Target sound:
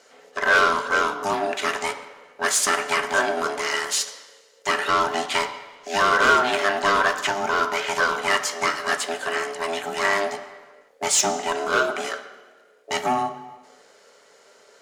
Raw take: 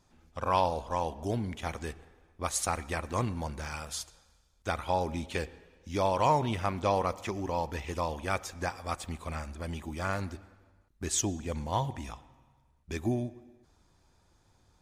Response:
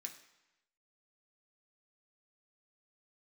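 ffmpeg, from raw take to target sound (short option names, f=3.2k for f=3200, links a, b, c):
-filter_complex "[0:a]aeval=exprs='val(0)*sin(2*PI*500*n/s)':c=same,asplit=2[a][b];[b]highpass=f=720:p=1,volume=20dB,asoftclip=type=tanh:threshold=-14dB[c];[a][c]amix=inputs=2:normalize=0,lowpass=f=4.6k:p=1,volume=-6dB,asplit=2[d][e];[1:a]atrim=start_sample=2205,asetrate=38367,aresample=44100,lowshelf=f=480:g=-5[f];[e][f]afir=irnorm=-1:irlink=0,volume=7dB[g];[d][g]amix=inputs=2:normalize=0"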